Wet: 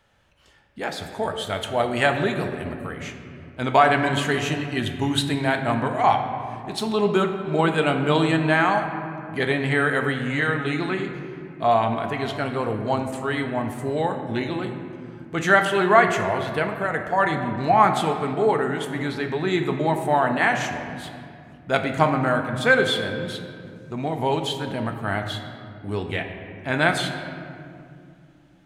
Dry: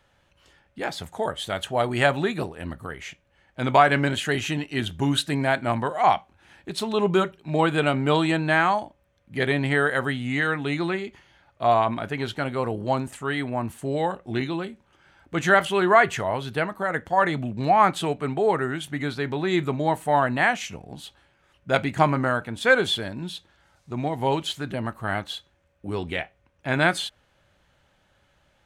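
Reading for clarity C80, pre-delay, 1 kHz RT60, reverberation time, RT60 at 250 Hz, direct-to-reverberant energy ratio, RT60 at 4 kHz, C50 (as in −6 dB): 8.0 dB, 4 ms, 2.1 s, 2.4 s, 3.6 s, 4.5 dB, 1.3 s, 7.0 dB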